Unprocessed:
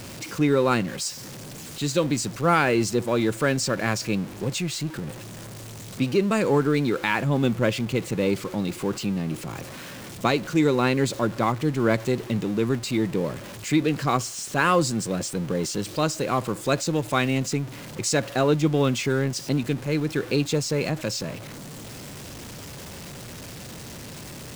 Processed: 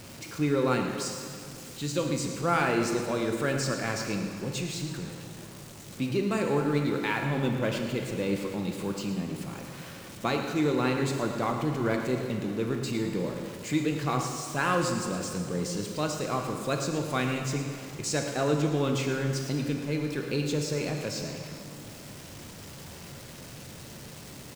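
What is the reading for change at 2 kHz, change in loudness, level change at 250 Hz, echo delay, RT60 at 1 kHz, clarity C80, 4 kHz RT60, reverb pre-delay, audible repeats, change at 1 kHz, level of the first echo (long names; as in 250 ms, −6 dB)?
−5.0 dB, −5.0 dB, −5.0 dB, 111 ms, 2.3 s, 5.0 dB, 2.1 s, 7 ms, 1, −5.0 dB, −11.5 dB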